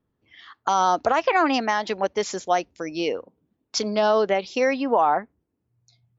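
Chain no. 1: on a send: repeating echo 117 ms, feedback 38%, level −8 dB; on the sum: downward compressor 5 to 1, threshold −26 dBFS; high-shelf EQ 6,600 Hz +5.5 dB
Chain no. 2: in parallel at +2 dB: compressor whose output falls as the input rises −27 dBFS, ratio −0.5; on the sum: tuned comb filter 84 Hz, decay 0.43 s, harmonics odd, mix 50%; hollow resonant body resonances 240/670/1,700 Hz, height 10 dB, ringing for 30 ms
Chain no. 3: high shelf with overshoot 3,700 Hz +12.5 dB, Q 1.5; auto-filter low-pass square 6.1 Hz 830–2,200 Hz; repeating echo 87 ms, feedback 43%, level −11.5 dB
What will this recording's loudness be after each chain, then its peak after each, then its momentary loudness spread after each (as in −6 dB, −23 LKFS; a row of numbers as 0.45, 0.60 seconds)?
−30.0, −20.0, −20.0 LKFS; −11.0, −6.0, −4.5 dBFS; 10, 11, 12 LU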